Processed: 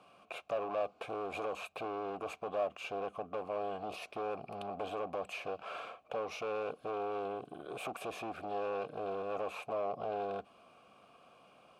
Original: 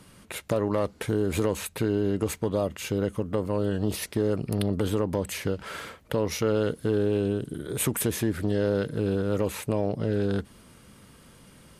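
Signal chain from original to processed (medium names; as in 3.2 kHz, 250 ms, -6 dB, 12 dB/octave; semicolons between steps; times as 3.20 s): hard clipper -27.5 dBFS, distortion -5 dB; vowel filter a; trim +8 dB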